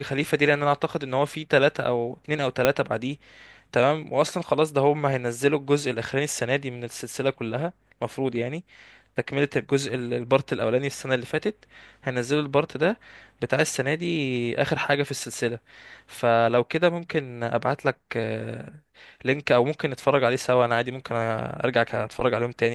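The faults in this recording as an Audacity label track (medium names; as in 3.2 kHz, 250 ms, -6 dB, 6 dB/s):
2.650000	2.650000	pop -4 dBFS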